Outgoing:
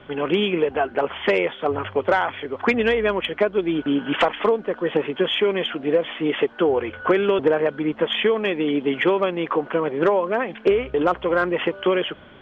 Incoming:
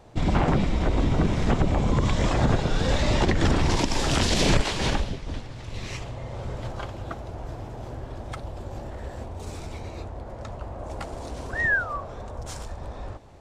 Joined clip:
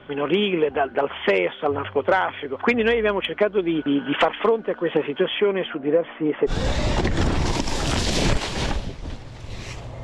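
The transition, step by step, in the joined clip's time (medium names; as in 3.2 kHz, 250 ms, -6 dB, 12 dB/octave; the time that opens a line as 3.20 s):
outgoing
5.24–6.52 s: low-pass 3 kHz -> 1.2 kHz
6.49 s: go over to incoming from 2.73 s, crossfade 0.06 s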